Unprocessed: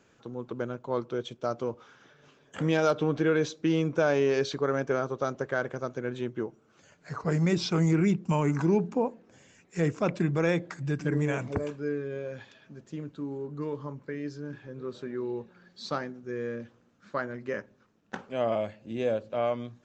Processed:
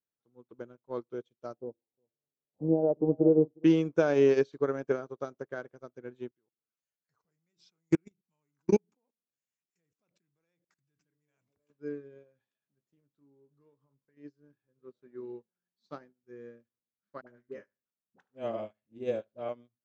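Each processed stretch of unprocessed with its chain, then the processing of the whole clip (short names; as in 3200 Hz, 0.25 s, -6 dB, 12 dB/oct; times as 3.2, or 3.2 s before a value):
1.57–3.64 steep low-pass 830 Hz 48 dB/oct + de-hum 85.51 Hz, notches 5 + echo 0.359 s -11.5 dB
6.28–11.7 level quantiser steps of 22 dB + high shelf 2500 Hz +11.5 dB
12.23–14.17 doubler 15 ms -9 dB + compressor 3:1, threshold -36 dBFS
17.21–19.49 dispersion highs, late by 61 ms, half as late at 520 Hz + feedback echo 74 ms, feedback 22%, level -13 dB
whole clip: dynamic EQ 340 Hz, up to +6 dB, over -39 dBFS, Q 1; upward expander 2.5:1, over -43 dBFS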